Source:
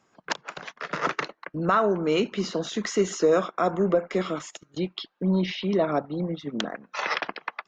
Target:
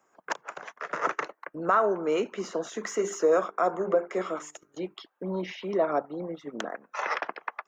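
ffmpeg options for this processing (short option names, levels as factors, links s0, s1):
-filter_complex "[0:a]aexciter=amount=2.6:drive=9.4:freq=6000,acrossover=split=330 2100:gain=0.178 1 0.2[s0][s1][s2];[s0][s1][s2]amix=inputs=3:normalize=0,asplit=3[s3][s4][s5];[s3]afade=t=out:st=2.79:d=0.02[s6];[s4]bandreject=f=50:t=h:w=6,bandreject=f=100:t=h:w=6,bandreject=f=150:t=h:w=6,bandreject=f=200:t=h:w=6,bandreject=f=250:t=h:w=6,bandreject=f=300:t=h:w=6,bandreject=f=350:t=h:w=6,bandreject=f=400:t=h:w=6,bandreject=f=450:t=h:w=6,afade=t=in:st=2.79:d=0.02,afade=t=out:st=4.93:d=0.02[s7];[s5]afade=t=in:st=4.93:d=0.02[s8];[s6][s7][s8]amix=inputs=3:normalize=0"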